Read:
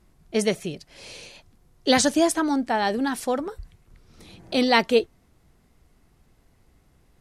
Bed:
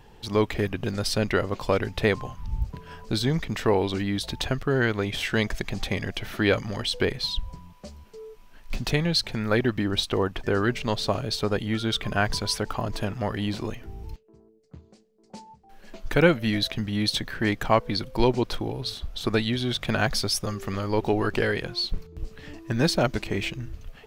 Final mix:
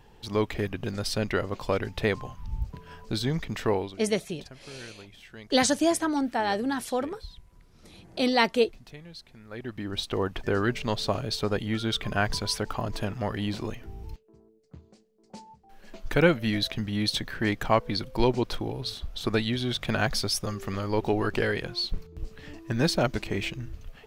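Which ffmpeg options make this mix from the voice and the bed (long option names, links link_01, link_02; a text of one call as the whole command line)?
ffmpeg -i stem1.wav -i stem2.wav -filter_complex "[0:a]adelay=3650,volume=-3.5dB[link_01];[1:a]volume=16dB,afade=type=out:start_time=3.72:duration=0.25:silence=0.125893,afade=type=in:start_time=9.49:duration=0.85:silence=0.105925[link_02];[link_01][link_02]amix=inputs=2:normalize=0" out.wav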